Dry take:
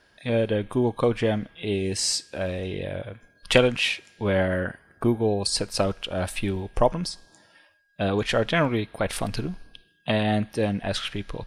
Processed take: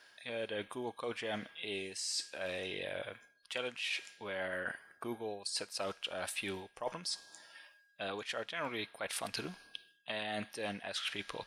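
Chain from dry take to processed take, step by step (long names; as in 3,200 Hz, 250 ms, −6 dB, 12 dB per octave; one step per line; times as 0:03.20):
high-pass filter 1,400 Hz 6 dB per octave
reversed playback
downward compressor 12 to 1, threshold −38 dBFS, peak gain reduction 22 dB
reversed playback
level +2.5 dB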